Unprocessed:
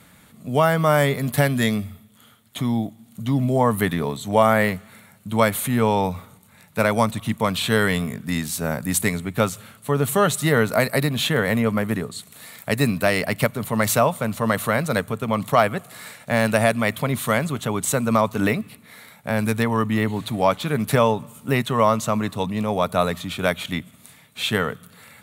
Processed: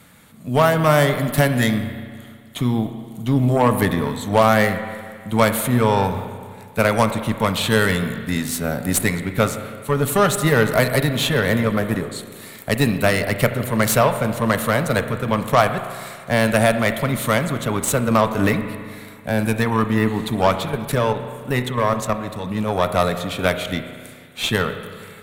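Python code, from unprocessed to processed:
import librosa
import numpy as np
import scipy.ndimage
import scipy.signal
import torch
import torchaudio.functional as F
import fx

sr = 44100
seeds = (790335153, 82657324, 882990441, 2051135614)

y = fx.level_steps(x, sr, step_db=10, at=(20.65, 22.51))
y = fx.cheby_harmonics(y, sr, harmonics=(8,), levels_db=(-22,), full_scale_db=-2.5)
y = fx.rev_spring(y, sr, rt60_s=2.0, pass_ms=(32, 40), chirp_ms=30, drr_db=8.5)
y = F.gain(torch.from_numpy(y), 1.5).numpy()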